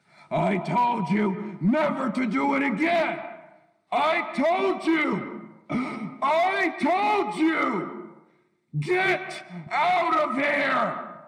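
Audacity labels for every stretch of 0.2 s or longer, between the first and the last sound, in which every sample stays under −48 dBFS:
3.580000	3.920000	silence
8.220000	8.730000	silence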